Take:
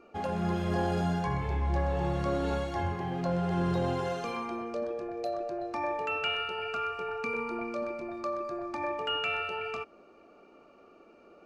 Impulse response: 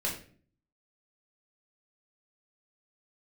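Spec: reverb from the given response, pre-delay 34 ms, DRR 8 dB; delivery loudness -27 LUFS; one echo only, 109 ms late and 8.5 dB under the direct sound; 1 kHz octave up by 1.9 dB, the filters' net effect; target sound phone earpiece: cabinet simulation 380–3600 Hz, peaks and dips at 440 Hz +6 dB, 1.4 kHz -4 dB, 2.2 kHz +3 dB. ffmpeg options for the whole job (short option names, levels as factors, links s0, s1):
-filter_complex "[0:a]equalizer=f=1000:t=o:g=3.5,aecho=1:1:109:0.376,asplit=2[s0][s1];[1:a]atrim=start_sample=2205,adelay=34[s2];[s1][s2]afir=irnorm=-1:irlink=0,volume=0.211[s3];[s0][s3]amix=inputs=2:normalize=0,highpass=380,equalizer=f=440:t=q:w=4:g=6,equalizer=f=1400:t=q:w=4:g=-4,equalizer=f=2200:t=q:w=4:g=3,lowpass=f=3600:w=0.5412,lowpass=f=3600:w=1.3066,volume=1.41"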